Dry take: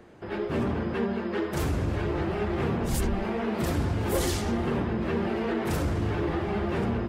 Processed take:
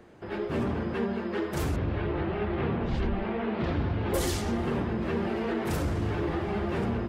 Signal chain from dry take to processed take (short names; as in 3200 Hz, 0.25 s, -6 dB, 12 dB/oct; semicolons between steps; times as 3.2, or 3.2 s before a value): 1.76–4.14 LPF 3800 Hz 24 dB/oct; gain -1.5 dB